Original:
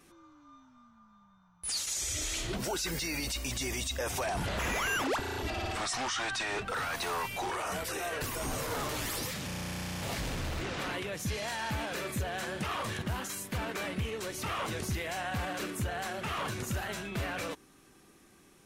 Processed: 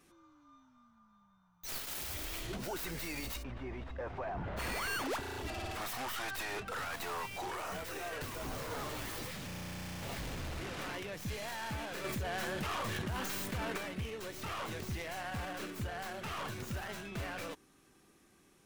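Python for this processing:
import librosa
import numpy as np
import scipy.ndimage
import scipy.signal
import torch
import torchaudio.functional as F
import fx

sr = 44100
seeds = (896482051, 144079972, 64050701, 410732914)

y = fx.tracing_dist(x, sr, depth_ms=0.22)
y = fx.lowpass(y, sr, hz=1500.0, slope=12, at=(3.42, 4.56), fade=0.02)
y = fx.env_flatten(y, sr, amount_pct=70, at=(12.04, 13.78))
y = y * 10.0 ** (-5.5 / 20.0)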